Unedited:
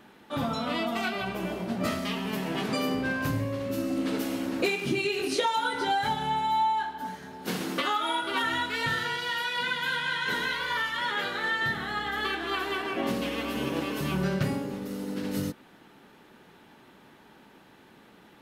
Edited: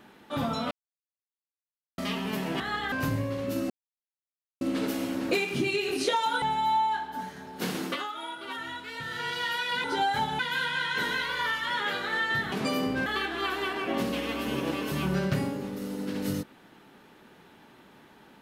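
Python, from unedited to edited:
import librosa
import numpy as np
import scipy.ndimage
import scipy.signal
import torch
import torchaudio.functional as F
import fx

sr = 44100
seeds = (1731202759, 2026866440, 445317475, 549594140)

y = fx.edit(x, sr, fx.silence(start_s=0.71, length_s=1.27),
    fx.swap(start_s=2.6, length_s=0.54, other_s=11.83, other_length_s=0.32),
    fx.insert_silence(at_s=3.92, length_s=0.91),
    fx.move(start_s=5.73, length_s=0.55, to_s=9.7),
    fx.fade_down_up(start_s=7.67, length_s=1.52, db=-9.0, fade_s=0.27), tone=tone)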